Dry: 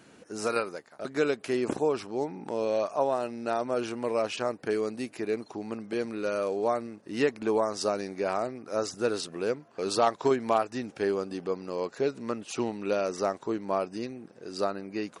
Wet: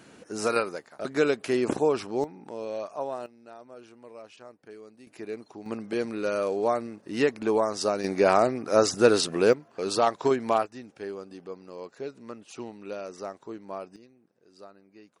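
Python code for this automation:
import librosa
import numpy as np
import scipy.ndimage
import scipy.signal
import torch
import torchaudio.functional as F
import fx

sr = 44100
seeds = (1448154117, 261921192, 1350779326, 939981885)

y = fx.gain(x, sr, db=fx.steps((0.0, 3.0), (2.24, -6.0), (3.26, -17.5), (5.07, -6.0), (5.66, 2.0), (8.04, 9.0), (9.53, 1.0), (10.66, -8.5), (13.96, -19.0)))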